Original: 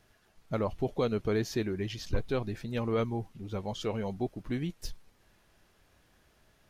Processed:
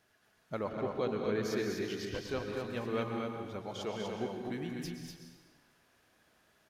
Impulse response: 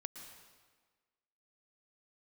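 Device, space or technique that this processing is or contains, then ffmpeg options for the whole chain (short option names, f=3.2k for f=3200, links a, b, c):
stadium PA: -filter_complex "[0:a]highpass=f=220:p=1,equalizer=f=1.6k:t=o:w=0.42:g=3,aecho=1:1:204.1|244.9:0.316|0.631[a];[1:a]atrim=start_sample=2205[b];[a][b]afir=irnorm=-1:irlink=0,asettb=1/sr,asplit=3[c][d][e];[c]atrim=end=0.694[f];[d]atrim=start=0.69:end=1.43,asetpts=PTS-STARTPTS,afade=t=in:d=0.004:c=qsin,afade=t=out:st=0.736:d=0.004:c=qsin,highshelf=f=7.6k:g=-12[g];[e]atrim=start=1.426[h];[f][g]acrossfade=d=0.004:c1=hsin:c2=qsin[i];[i][h]acrossfade=d=0.004:c1=qsin:c2=hsin"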